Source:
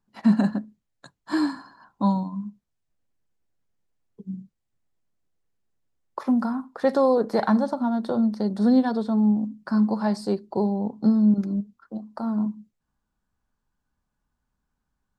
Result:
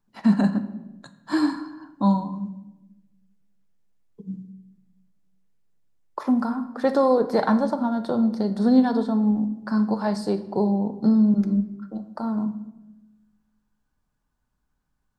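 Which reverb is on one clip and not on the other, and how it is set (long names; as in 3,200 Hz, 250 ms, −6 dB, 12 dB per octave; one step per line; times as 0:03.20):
rectangular room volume 450 cubic metres, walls mixed, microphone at 0.44 metres
level +1 dB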